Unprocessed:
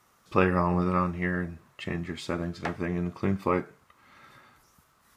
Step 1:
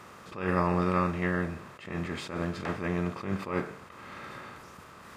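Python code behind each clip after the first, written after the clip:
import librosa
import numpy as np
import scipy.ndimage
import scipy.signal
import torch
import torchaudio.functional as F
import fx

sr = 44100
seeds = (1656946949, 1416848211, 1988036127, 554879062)

y = fx.bin_compress(x, sr, power=0.6)
y = fx.attack_slew(y, sr, db_per_s=110.0)
y = y * librosa.db_to_amplitude(-3.0)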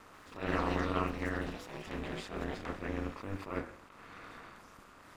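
y = fx.echo_pitch(x, sr, ms=142, semitones=7, count=3, db_per_echo=-6.0)
y = y * np.sin(2.0 * np.pi * 100.0 * np.arange(len(y)) / sr)
y = y * librosa.db_to_amplitude(-4.0)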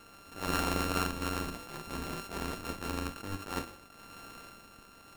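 y = np.r_[np.sort(x[:len(x) // 32 * 32].reshape(-1, 32), axis=1).ravel(), x[len(x) // 32 * 32:]]
y = y * librosa.db_to_amplitude(1.0)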